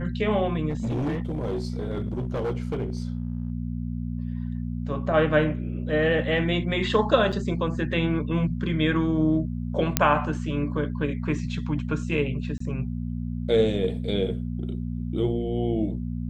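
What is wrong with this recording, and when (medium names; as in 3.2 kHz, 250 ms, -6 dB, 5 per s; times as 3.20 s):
hum 60 Hz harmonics 4 -30 dBFS
0.69–3.52 s: clipped -23.5 dBFS
7.32–7.33 s: dropout 6.3 ms
9.97 s: pop -1 dBFS
12.58–12.60 s: dropout 24 ms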